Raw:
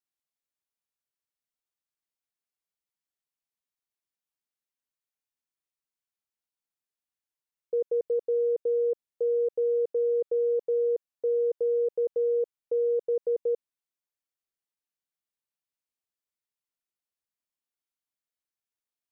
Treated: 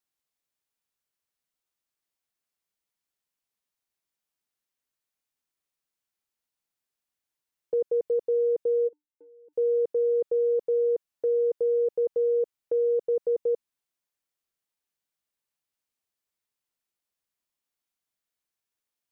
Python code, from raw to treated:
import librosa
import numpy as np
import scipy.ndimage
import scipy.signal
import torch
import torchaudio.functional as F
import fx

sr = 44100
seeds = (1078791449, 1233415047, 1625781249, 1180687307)

y = fx.dynamic_eq(x, sr, hz=500.0, q=1.3, threshold_db=-39.0, ratio=4.0, max_db=-3)
y = fx.comb_fb(y, sr, f0_hz=300.0, decay_s=0.21, harmonics='odd', damping=0.0, mix_pct=100, at=(8.87, 9.52), fade=0.02)
y = F.gain(torch.from_numpy(y), 4.5).numpy()